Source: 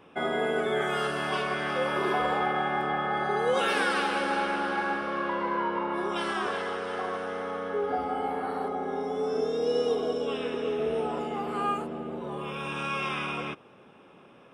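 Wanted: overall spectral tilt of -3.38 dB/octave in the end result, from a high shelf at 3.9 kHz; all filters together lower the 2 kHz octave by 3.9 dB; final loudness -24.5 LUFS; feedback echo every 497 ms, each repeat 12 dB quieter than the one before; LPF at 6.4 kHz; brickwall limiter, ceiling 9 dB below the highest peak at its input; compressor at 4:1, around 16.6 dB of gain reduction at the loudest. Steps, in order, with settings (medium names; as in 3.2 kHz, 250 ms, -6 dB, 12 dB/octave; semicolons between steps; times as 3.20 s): low-pass 6.4 kHz; peaking EQ 2 kHz -6 dB; treble shelf 3.9 kHz +3 dB; compression 4:1, threshold -44 dBFS; peak limiter -39 dBFS; feedback delay 497 ms, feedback 25%, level -12 dB; trim +23 dB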